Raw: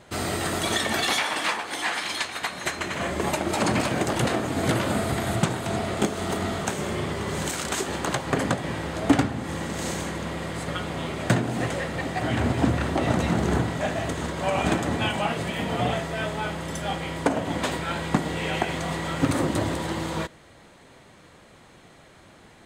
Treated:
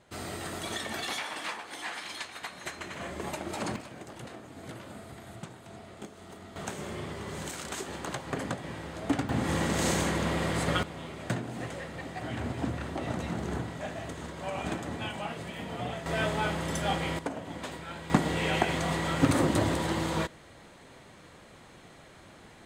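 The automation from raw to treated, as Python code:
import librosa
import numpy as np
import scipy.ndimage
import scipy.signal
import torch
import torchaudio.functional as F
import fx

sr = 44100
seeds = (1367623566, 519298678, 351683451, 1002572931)

y = fx.gain(x, sr, db=fx.steps((0.0, -10.5), (3.76, -20.0), (6.56, -9.5), (9.29, 2.0), (10.83, -10.5), (16.06, -0.5), (17.19, -12.0), (18.1, -1.0)))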